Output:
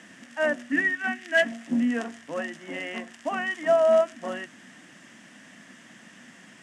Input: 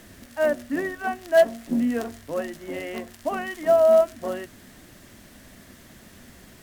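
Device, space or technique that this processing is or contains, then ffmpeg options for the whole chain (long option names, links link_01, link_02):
television speaker: -filter_complex "[0:a]highpass=frequency=170:width=0.5412,highpass=frequency=170:width=1.3066,equalizer=frequency=400:width_type=q:width=4:gain=-10,equalizer=frequency=590:width_type=q:width=4:gain=-4,equalizer=frequency=1800:width_type=q:width=4:gain=6,equalizer=frequency=2900:width_type=q:width=4:gain=5,equalizer=frequency=4200:width_type=q:width=4:gain=-9,lowpass=frequency=8200:width=0.5412,lowpass=frequency=8200:width=1.3066,asettb=1/sr,asplit=3[link_01][link_02][link_03];[link_01]atrim=end=0.724[link_04];[link_02]atrim=start=0.72:end=1.52,asetpts=PTS-STARTPTS,afade=type=in:duration=0.004:curve=qsin,afade=type=out:start_time=0.796:duration=0.004:curve=qsin,equalizer=frequency=125:width_type=o:width=1:gain=-6,equalizer=frequency=250:width_type=o:width=1:gain=6,equalizer=frequency=500:width_type=o:width=1:gain=-7,equalizer=frequency=1000:width_type=o:width=1:gain=-7,equalizer=frequency=2000:width_type=o:width=1:gain=7[link_05];[link_03]atrim=start=1.516[link_06];[link_04][link_05]acrossfade=duration=0.004:curve1=hsin:curve2=qsin[link_07];[link_07][link_06]acrossfade=duration=0.004:curve1=qsin:curve2=hsin"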